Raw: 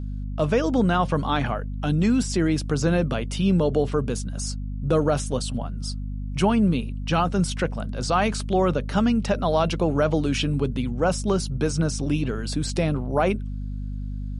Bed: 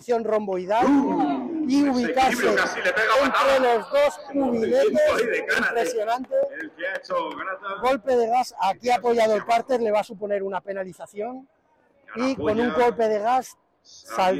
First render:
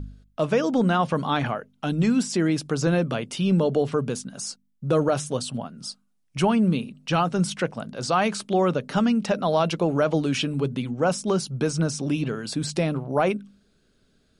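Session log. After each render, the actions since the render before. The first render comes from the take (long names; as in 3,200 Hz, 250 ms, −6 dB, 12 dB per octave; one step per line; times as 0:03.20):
hum removal 50 Hz, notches 5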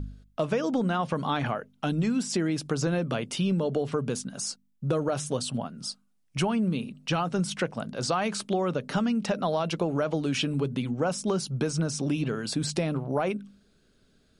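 downward compressor, threshold −23 dBFS, peak gain reduction 7.5 dB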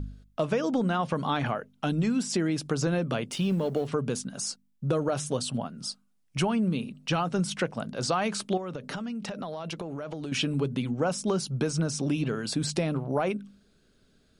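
0:03.31–0:03.88: mu-law and A-law mismatch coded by A
0:08.57–0:10.32: downward compressor 10 to 1, threshold −31 dBFS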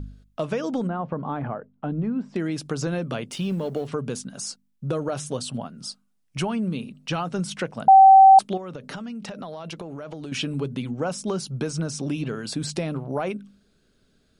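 0:00.87–0:02.36: low-pass filter 1,100 Hz
0:07.88–0:08.39: beep over 772 Hz −7 dBFS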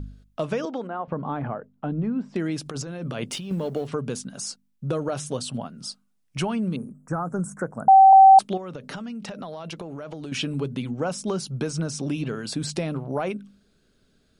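0:00.65–0:01.08: band-pass filter 370–3,900 Hz
0:02.66–0:03.51: compressor whose output falls as the input rises −32 dBFS
0:06.76–0:08.13: Chebyshev band-stop filter 1,500–7,300 Hz, order 3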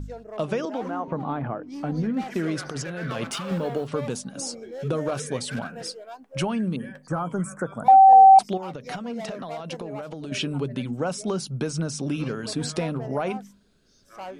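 mix in bed −17 dB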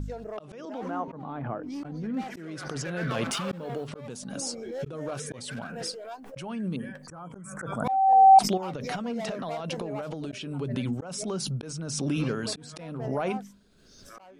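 volume swells 592 ms
background raised ahead of every attack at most 38 dB per second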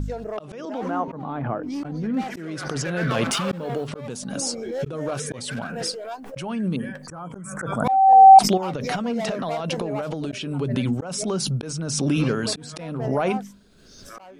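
level +6.5 dB
brickwall limiter −3 dBFS, peak gain reduction 1 dB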